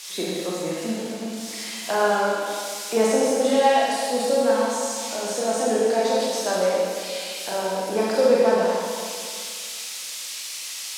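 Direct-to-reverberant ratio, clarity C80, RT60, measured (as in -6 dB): -6.0 dB, -1.0 dB, 2.1 s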